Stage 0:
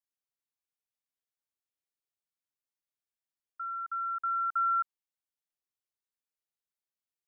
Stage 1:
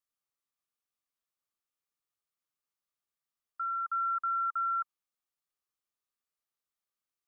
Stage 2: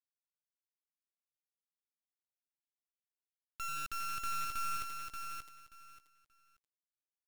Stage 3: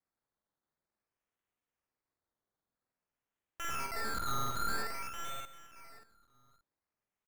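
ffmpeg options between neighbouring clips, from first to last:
-af "equalizer=f=1.2k:w=6.1:g=10,alimiter=level_in=3.5dB:limit=-24dB:level=0:latency=1,volume=-3.5dB"
-filter_complex "[0:a]asplit=2[a][b];[b]asplit=5[c][d][e][f][g];[c]adelay=85,afreqshift=150,volume=-13dB[h];[d]adelay=170,afreqshift=300,volume=-18.8dB[i];[e]adelay=255,afreqshift=450,volume=-24.7dB[j];[f]adelay=340,afreqshift=600,volume=-30.5dB[k];[g]adelay=425,afreqshift=750,volume=-36.4dB[l];[h][i][j][k][l]amix=inputs=5:normalize=0[m];[a][m]amix=inputs=2:normalize=0,acrusher=bits=3:dc=4:mix=0:aa=0.000001,asplit=2[n][o];[o]aecho=0:1:581|1162|1743:0.562|0.118|0.0248[p];[n][p]amix=inputs=2:normalize=0,volume=-4.5dB"
-filter_complex "[0:a]acrusher=samples=13:mix=1:aa=0.000001:lfo=1:lforange=7.8:lforate=0.51,asplit=2[a][b];[b]adelay=48,volume=-2dB[c];[a][c]amix=inputs=2:normalize=0"

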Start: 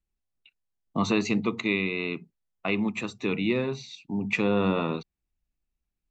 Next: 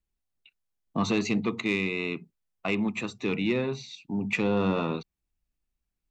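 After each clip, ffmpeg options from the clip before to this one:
-af "asoftclip=type=tanh:threshold=-15.5dB"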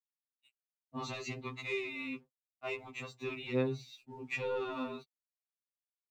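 -af "aeval=exprs='sgn(val(0))*max(abs(val(0))-0.00112,0)':c=same,afftfilt=real='re*2.45*eq(mod(b,6),0)':imag='im*2.45*eq(mod(b,6),0)':win_size=2048:overlap=0.75,volume=-7dB"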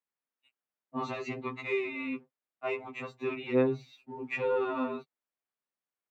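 -filter_complex "[0:a]acrossover=split=150 2400:gain=0.178 1 0.178[a][b][c];[a][b][c]amix=inputs=3:normalize=0,volume=7dB"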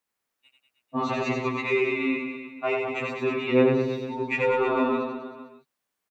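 -filter_complex "[0:a]asplit=2[a][b];[b]acompressor=threshold=-39dB:ratio=6,volume=-1dB[c];[a][c]amix=inputs=2:normalize=0,aecho=1:1:90|193.5|312.5|449.4|606.8:0.631|0.398|0.251|0.158|0.1,volume=4dB"

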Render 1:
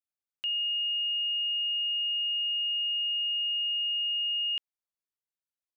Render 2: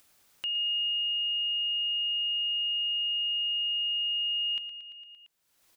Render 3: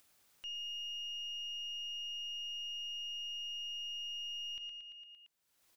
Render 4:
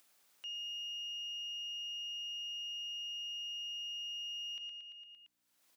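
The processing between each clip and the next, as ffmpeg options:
-filter_complex "[0:a]asplit=2[a][b];[b]aecho=0:1:114|228|342|456|570|684:0.251|0.146|0.0845|0.049|0.0284|0.0165[c];[a][c]amix=inputs=2:normalize=0,acompressor=mode=upward:threshold=-38dB:ratio=2.5,volume=-1dB"
-af "aeval=exprs='0.0794*(cos(1*acos(clip(val(0)/0.0794,-1,1)))-cos(1*PI/2))+0.00631*(cos(4*acos(clip(val(0)/0.0794,-1,1)))-cos(4*PI/2))':c=same,alimiter=level_in=8dB:limit=-24dB:level=0:latency=1,volume=-8dB,volume=-5.5dB"
-af "aeval=exprs='val(0)+0.000158*(sin(2*PI*60*n/s)+sin(2*PI*2*60*n/s)/2+sin(2*PI*3*60*n/s)/3+sin(2*PI*4*60*n/s)/4+sin(2*PI*5*60*n/s)/5)':c=same,highpass=370"

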